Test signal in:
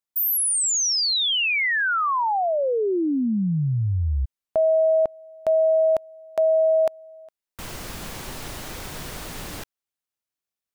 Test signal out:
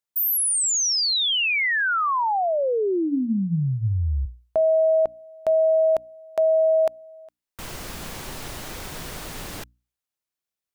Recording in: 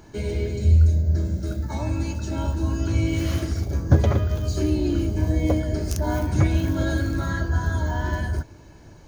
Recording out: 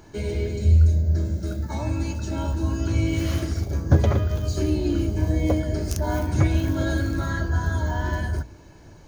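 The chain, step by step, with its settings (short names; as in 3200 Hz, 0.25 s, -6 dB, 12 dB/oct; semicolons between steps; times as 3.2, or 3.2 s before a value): notches 60/120/180/240/300 Hz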